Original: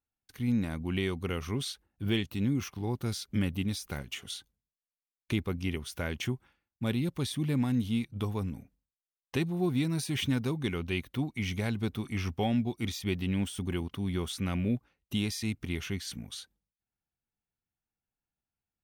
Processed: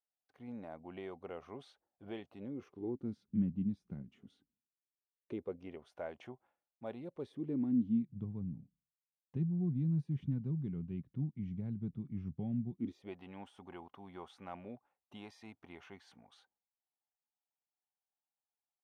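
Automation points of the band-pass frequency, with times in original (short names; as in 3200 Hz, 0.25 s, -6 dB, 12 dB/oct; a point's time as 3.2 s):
band-pass, Q 3
2.35 s 670 Hz
3.31 s 190 Hz
4.02 s 190 Hz
5.91 s 670 Hz
6.96 s 670 Hz
8.2 s 160 Hz
12.71 s 160 Hz
13.15 s 810 Hz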